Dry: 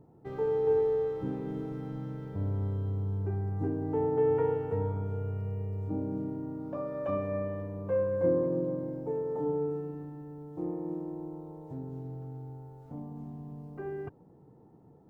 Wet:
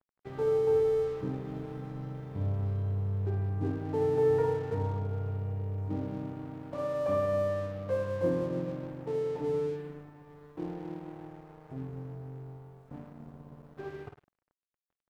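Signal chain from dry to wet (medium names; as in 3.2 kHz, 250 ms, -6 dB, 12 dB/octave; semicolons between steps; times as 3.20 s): flutter echo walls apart 9 m, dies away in 0.59 s; crossover distortion -48.5 dBFS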